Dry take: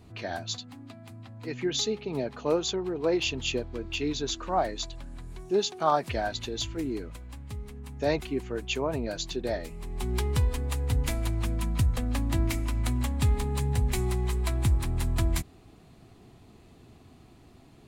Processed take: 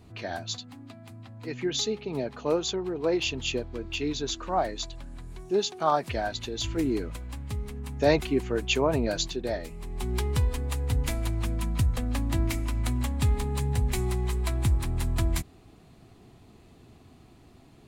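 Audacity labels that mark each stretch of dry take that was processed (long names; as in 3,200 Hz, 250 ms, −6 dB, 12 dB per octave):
6.640000	9.280000	clip gain +5 dB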